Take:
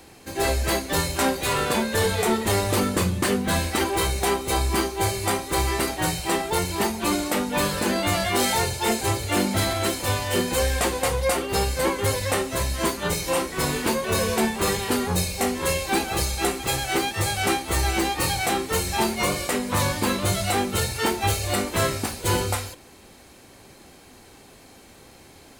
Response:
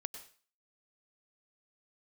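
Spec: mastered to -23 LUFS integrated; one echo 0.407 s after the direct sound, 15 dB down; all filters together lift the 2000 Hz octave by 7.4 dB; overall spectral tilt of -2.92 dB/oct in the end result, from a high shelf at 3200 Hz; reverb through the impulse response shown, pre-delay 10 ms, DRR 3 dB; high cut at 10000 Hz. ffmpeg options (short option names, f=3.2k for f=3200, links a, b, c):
-filter_complex "[0:a]lowpass=10k,equalizer=f=2k:t=o:g=7.5,highshelf=f=3.2k:g=4.5,aecho=1:1:407:0.178,asplit=2[a][b];[1:a]atrim=start_sample=2205,adelay=10[c];[b][c]afir=irnorm=-1:irlink=0,volume=-1dB[d];[a][d]amix=inputs=2:normalize=0,volume=-4.5dB"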